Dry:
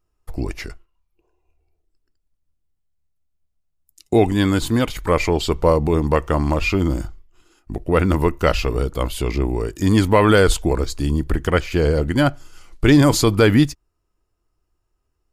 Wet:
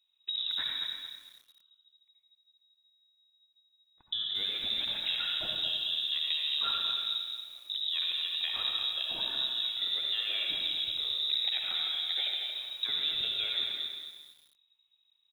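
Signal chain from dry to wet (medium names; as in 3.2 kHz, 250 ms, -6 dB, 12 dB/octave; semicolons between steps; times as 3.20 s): compression 16:1, threshold -25 dBFS, peak gain reduction 17.5 dB; delay 139 ms -20.5 dB; reverberation RT60 1.1 s, pre-delay 63 ms, DRR 0.5 dB; frequency inversion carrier 3.8 kHz; bit-crushed delay 228 ms, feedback 35%, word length 8-bit, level -6 dB; trim -7.5 dB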